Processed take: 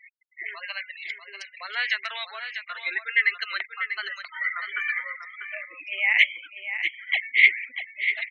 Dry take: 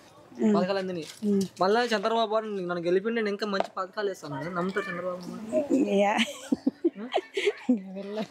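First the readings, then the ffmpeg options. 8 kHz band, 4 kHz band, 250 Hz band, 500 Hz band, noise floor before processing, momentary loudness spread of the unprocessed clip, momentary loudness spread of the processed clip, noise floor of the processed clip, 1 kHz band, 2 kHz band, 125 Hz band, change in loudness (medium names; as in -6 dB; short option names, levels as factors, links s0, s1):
under -10 dB, +4.0 dB, under -35 dB, -23.0 dB, -53 dBFS, 9 LU, 17 LU, -52 dBFS, -9.0 dB, +13.0 dB, under -40 dB, +3.0 dB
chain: -filter_complex "[0:a]asplit=2[s0][s1];[s1]adynamicsmooth=sensitivity=3.5:basefreq=3700,volume=0.841[s2];[s0][s2]amix=inputs=2:normalize=0,alimiter=limit=0.2:level=0:latency=1:release=483,highpass=f=2100:t=q:w=8.7,afftfilt=real='re*gte(hypot(re,im),0.02)':imag='im*gte(hypot(re,im),0.02)':win_size=1024:overlap=0.75,aecho=1:1:643:0.355"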